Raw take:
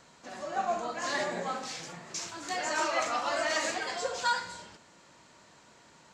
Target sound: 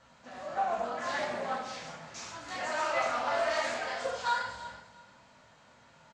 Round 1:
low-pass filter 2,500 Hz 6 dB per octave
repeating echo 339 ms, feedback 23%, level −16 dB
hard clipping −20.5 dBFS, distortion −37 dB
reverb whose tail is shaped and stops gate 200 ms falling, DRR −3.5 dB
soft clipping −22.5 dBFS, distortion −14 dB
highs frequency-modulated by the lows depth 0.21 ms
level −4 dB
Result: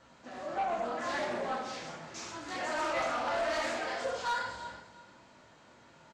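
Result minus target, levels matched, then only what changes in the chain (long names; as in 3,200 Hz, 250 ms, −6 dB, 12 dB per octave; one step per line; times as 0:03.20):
soft clipping: distortion +16 dB; 250 Hz band +5.0 dB
add after low-pass filter: parametric band 340 Hz −10.5 dB 0.56 octaves
change: soft clipping −12 dBFS, distortion −29 dB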